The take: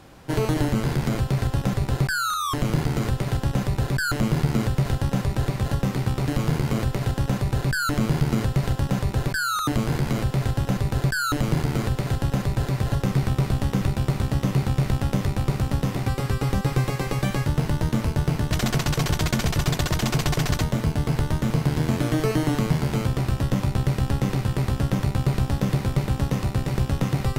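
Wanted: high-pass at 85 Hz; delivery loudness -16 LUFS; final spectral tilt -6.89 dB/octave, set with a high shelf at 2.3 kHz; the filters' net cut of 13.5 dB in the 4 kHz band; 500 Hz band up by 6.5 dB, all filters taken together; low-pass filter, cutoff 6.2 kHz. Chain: high-pass 85 Hz; low-pass 6.2 kHz; peaking EQ 500 Hz +8.5 dB; treble shelf 2.3 kHz -8.5 dB; peaking EQ 4 kHz -9 dB; trim +8 dB

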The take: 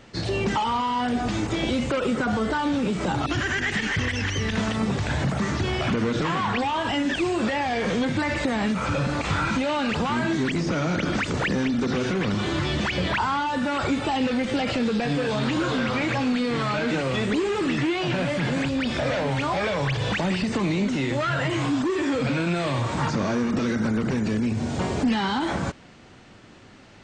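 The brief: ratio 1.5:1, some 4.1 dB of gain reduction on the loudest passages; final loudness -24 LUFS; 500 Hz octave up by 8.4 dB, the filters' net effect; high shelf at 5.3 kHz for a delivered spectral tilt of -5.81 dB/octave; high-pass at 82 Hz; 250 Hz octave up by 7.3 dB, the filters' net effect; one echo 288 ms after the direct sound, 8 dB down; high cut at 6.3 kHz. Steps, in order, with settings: high-pass 82 Hz; low-pass 6.3 kHz; peaking EQ 250 Hz +6.5 dB; peaking EQ 500 Hz +8.5 dB; treble shelf 5.3 kHz -7.5 dB; compression 1.5:1, threshold -23 dBFS; delay 288 ms -8 dB; trim -2.5 dB

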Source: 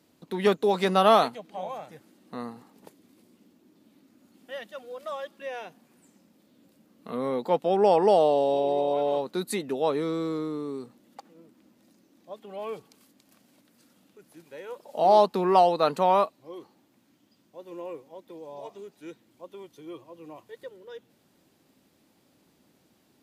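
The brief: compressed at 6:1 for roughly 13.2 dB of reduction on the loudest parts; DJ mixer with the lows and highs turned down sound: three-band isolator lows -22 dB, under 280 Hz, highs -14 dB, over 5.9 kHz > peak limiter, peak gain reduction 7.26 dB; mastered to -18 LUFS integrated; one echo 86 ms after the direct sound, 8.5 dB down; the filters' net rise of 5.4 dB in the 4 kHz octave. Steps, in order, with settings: peaking EQ 4 kHz +7.5 dB; compression 6:1, threshold -28 dBFS; three-band isolator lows -22 dB, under 280 Hz, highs -14 dB, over 5.9 kHz; delay 86 ms -8.5 dB; trim +19.5 dB; peak limiter -6 dBFS

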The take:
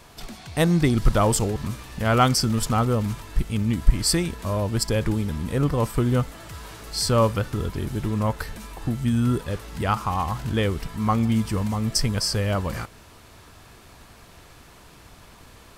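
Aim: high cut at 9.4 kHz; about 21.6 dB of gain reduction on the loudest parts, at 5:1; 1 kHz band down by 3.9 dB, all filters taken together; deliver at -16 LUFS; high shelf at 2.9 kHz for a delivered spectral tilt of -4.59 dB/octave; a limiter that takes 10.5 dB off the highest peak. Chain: low-pass 9.4 kHz; peaking EQ 1 kHz -6.5 dB; treble shelf 2.9 kHz +8 dB; compression 5:1, threshold -36 dBFS; trim +25 dB; peak limiter -5 dBFS

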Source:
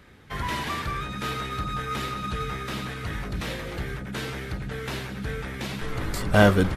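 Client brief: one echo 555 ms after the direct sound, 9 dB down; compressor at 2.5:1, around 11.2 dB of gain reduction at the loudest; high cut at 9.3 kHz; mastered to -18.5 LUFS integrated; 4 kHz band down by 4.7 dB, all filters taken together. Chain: low-pass 9.3 kHz; peaking EQ 4 kHz -6 dB; compression 2.5:1, threshold -29 dBFS; delay 555 ms -9 dB; trim +14.5 dB

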